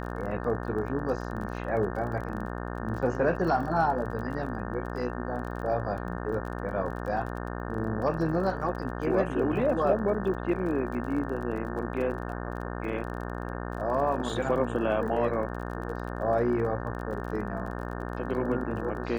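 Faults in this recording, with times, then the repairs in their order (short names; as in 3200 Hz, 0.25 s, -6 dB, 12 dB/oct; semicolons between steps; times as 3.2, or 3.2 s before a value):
buzz 60 Hz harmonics 30 -35 dBFS
crackle 32/s -37 dBFS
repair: de-click; de-hum 60 Hz, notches 30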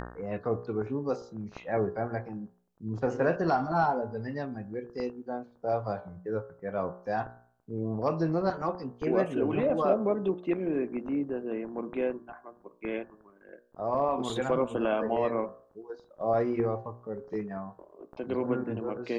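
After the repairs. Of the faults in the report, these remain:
none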